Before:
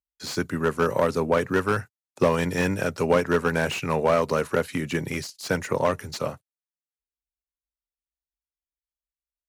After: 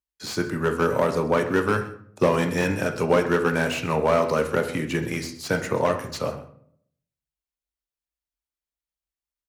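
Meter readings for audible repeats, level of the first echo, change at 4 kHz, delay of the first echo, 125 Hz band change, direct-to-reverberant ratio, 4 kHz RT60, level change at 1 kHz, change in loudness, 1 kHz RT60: 1, −17.5 dB, +0.5 dB, 129 ms, +1.0 dB, 5.5 dB, 0.40 s, +1.0 dB, +1.0 dB, 0.55 s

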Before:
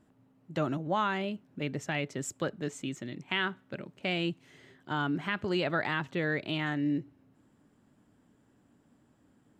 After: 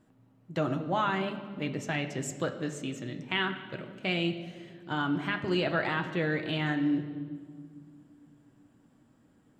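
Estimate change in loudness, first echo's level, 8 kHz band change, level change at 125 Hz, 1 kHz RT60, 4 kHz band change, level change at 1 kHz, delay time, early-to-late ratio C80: +1.5 dB, no echo audible, +0.5 dB, +2.0 dB, 1.7 s, +1.5 dB, +1.0 dB, no echo audible, 12.0 dB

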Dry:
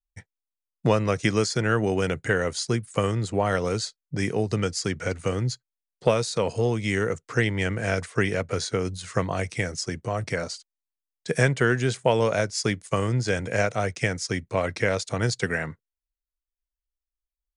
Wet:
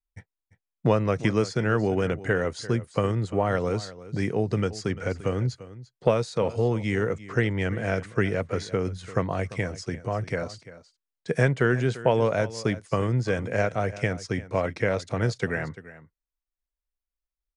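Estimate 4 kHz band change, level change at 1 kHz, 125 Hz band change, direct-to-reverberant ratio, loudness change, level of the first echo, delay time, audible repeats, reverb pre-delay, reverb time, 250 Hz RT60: −7.0 dB, −1.0 dB, 0.0 dB, no reverb audible, −1.0 dB, −16.5 dB, 344 ms, 1, no reverb audible, no reverb audible, no reverb audible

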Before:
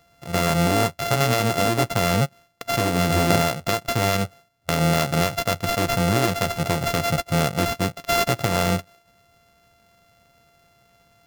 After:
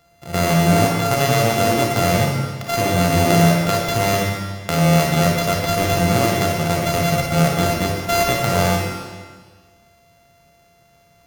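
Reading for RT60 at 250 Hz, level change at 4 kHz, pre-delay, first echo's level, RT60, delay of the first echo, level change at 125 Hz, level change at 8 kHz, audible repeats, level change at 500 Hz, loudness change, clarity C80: 1.6 s, +2.5 dB, 30 ms, no echo audible, 1.6 s, no echo audible, +5.0 dB, +4.0 dB, no echo audible, +4.5 dB, +4.0 dB, 2.5 dB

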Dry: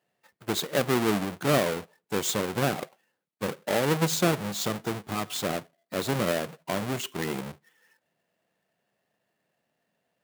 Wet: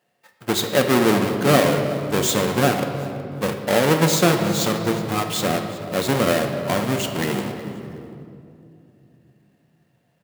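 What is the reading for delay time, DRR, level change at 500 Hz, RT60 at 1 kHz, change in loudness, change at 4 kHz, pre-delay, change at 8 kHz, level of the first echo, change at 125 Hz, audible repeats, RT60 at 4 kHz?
370 ms, 4.5 dB, +8.5 dB, 2.3 s, +8.0 dB, +7.5 dB, 4 ms, +7.0 dB, −19.0 dB, +8.5 dB, 2, 1.6 s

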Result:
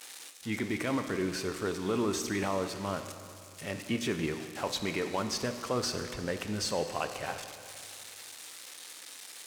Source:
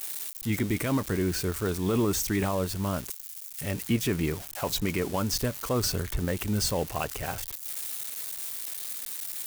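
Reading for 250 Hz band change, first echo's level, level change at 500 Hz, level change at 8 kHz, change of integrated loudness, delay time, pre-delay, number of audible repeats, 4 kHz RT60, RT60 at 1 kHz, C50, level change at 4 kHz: −5.0 dB, no echo audible, −2.5 dB, −6.5 dB, −5.0 dB, no echo audible, 14 ms, no echo audible, 2.4 s, 2.5 s, 8.5 dB, −2.5 dB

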